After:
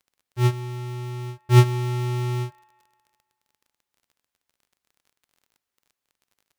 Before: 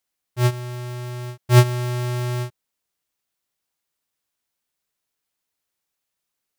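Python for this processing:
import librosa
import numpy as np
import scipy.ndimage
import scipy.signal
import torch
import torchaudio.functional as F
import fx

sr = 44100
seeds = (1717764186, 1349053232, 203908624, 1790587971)

p1 = fx.high_shelf(x, sr, hz=4500.0, db=-5.5)
p2 = fx.notch(p1, sr, hz=620.0, q=12.0)
p3 = fx.notch_comb(p2, sr, f0_hz=160.0)
p4 = fx.dmg_crackle(p3, sr, seeds[0], per_s=28.0, level_db=-47.0)
y = p4 + fx.echo_wet_bandpass(p4, sr, ms=180, feedback_pct=51, hz=1100.0, wet_db=-21.5, dry=0)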